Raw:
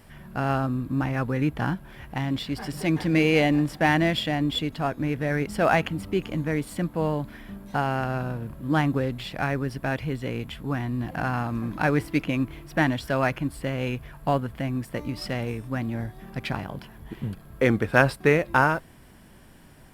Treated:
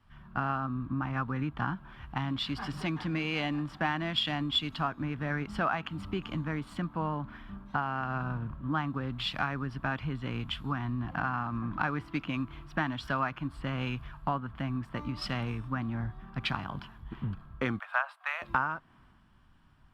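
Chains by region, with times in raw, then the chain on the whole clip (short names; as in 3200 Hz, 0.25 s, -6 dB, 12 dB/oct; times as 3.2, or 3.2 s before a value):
17.79–18.42 steep high-pass 600 Hz 72 dB/oct + bell 5400 Hz -8 dB 0.94 oct
whole clip: EQ curve 260 Hz 0 dB, 500 Hz -9 dB, 1200 Hz +10 dB, 2000 Hz -2 dB, 3100 Hz +3 dB, 12000 Hz -17 dB; compressor 6:1, threshold -29 dBFS; three-band expander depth 70%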